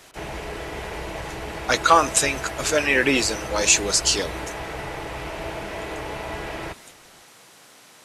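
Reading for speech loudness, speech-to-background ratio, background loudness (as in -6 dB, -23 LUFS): -20.0 LUFS, 12.5 dB, -32.5 LUFS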